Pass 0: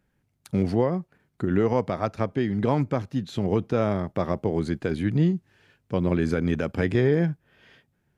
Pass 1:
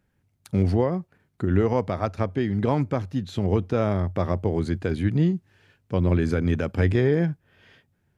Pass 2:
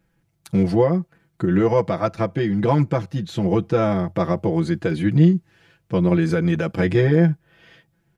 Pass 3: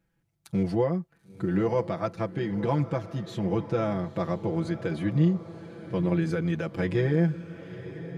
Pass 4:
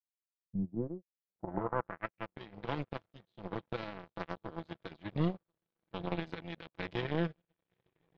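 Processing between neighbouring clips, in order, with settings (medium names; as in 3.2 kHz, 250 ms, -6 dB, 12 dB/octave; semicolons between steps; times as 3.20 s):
peaking EQ 91 Hz +11 dB 0.24 oct
comb 6 ms, depth 92%; trim +2 dB
echo that smears into a reverb 955 ms, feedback 42%, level -13.5 dB; trim -8 dB
power-law waveshaper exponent 3; saturation -23.5 dBFS, distortion -9 dB; low-pass sweep 130 Hz -> 3.7 kHz, 0.35–2.42 s; trim +2.5 dB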